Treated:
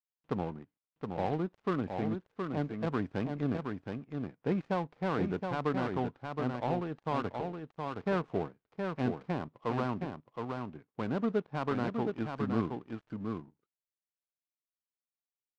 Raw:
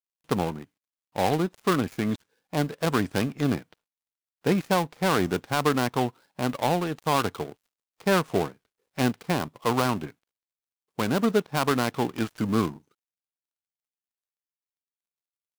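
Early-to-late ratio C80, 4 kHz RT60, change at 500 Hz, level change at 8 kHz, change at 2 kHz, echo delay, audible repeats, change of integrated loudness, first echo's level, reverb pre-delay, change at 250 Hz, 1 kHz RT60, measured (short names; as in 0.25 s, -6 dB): none, none, -7.5 dB, under -25 dB, -11.0 dB, 0.719 s, 1, -8.5 dB, -5.0 dB, none, -6.5 dB, none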